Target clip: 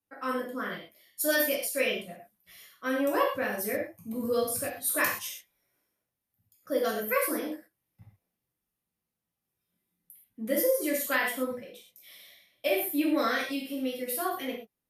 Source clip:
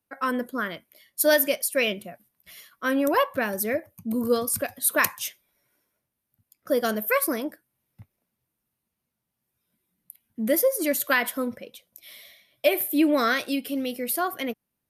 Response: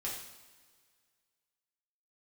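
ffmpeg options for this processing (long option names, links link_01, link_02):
-filter_complex "[0:a]asplit=3[link_01][link_02][link_03];[link_01]afade=type=out:start_time=12.75:duration=0.02[link_04];[link_02]agate=range=-7dB:threshold=-30dB:ratio=16:detection=peak,afade=type=in:start_time=12.75:duration=0.02,afade=type=out:start_time=13.67:duration=0.02[link_05];[link_03]afade=type=in:start_time=13.67:duration=0.02[link_06];[link_04][link_05][link_06]amix=inputs=3:normalize=0[link_07];[1:a]atrim=start_sample=2205,atrim=end_sample=6174[link_08];[link_07][link_08]afir=irnorm=-1:irlink=0,volume=-5.5dB"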